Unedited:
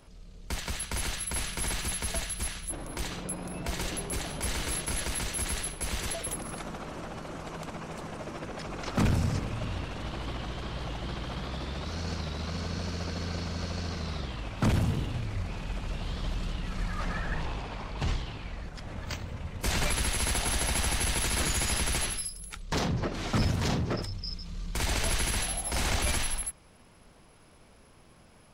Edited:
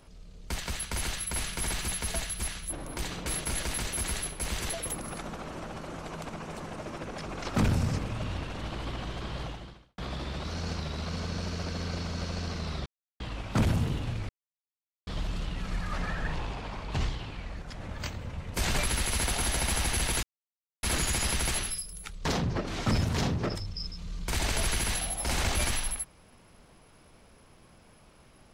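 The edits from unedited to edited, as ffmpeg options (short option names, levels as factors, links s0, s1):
-filter_complex "[0:a]asplit=7[s0][s1][s2][s3][s4][s5][s6];[s0]atrim=end=3.262[s7];[s1]atrim=start=4.668:end=11.39,asetpts=PTS-STARTPTS,afade=t=out:st=6.172:d=0.55:c=qua[s8];[s2]atrim=start=11.39:end=14.27,asetpts=PTS-STARTPTS,afade=t=in:d=0.004:c=hsin,afade=t=out:st=2.876:d=0.004:c=hsin,apad=pad_dur=0.34[s9];[s3]atrim=start=14.27:end=15.36,asetpts=PTS-STARTPTS,afade=t=in:d=0.004:c=hsin,afade=t=out:st=1.086:d=0.004:c=hsin[s10];[s4]atrim=start=15.36:end=16.14,asetpts=PTS-STARTPTS,volume=0[s11];[s5]atrim=start=16.14:end=21.3,asetpts=PTS-STARTPTS,afade=t=in:d=0.004:c=hsin,afade=t=out:st=5.156:d=0.004:c=hsin,apad=pad_dur=0.6[s12];[s6]atrim=start=21.3,asetpts=PTS-STARTPTS,afade=t=in:d=0.004:c=hsin[s13];[s8][s9][s10][s11][s12][s13]concat=n=6:v=0:a=1[s14];[s7][s14]acrossfade=d=0.004:c1=hsin:c2=hsin"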